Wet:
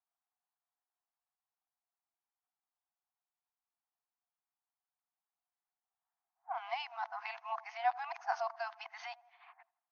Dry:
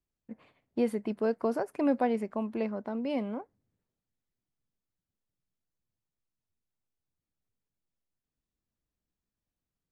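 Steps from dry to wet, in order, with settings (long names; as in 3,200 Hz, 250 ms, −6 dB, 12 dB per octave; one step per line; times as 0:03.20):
played backwards from end to start
low-pass that shuts in the quiet parts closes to 970 Hz, open at −29.5 dBFS
on a send: delay with a low-pass on its return 83 ms, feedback 47%, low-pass 1,000 Hz, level −20.5 dB
on the sum: downward compressor, threshold −30 dBFS, peak gain reduction 8.5 dB
brick-wall band-pass 670–6,600 Hz
level +7 dB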